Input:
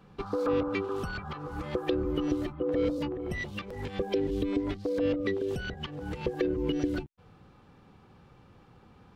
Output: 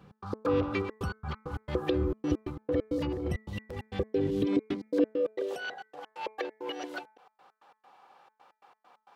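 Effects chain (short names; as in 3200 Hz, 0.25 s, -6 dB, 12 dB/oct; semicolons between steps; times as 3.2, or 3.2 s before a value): reverse delay 0.205 s, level -12 dB; high-pass sweep 72 Hz -> 760 Hz, 3.98–5.65; step gate "x.x.xxxx.x." 134 bpm -60 dB; de-hum 217.2 Hz, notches 11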